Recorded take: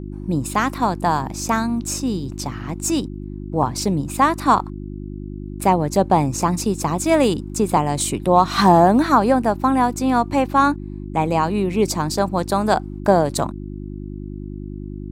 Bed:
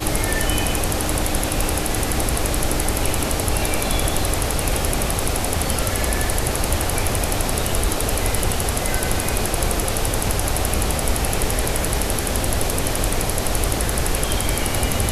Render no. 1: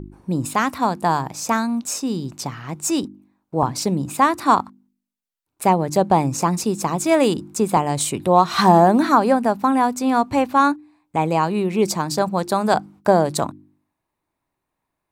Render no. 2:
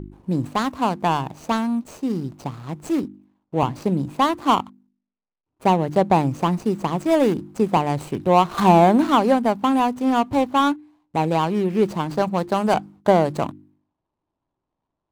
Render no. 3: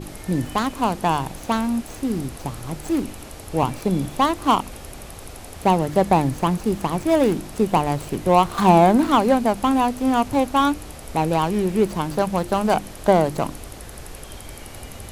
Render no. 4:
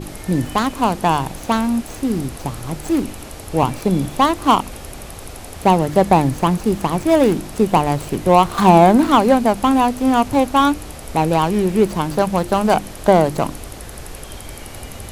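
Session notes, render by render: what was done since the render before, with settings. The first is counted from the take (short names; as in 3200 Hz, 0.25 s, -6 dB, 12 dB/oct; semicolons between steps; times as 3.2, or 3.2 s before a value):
de-hum 50 Hz, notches 7
median filter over 25 samples
add bed -16.5 dB
gain +4 dB; limiter -1 dBFS, peak gain reduction 1.5 dB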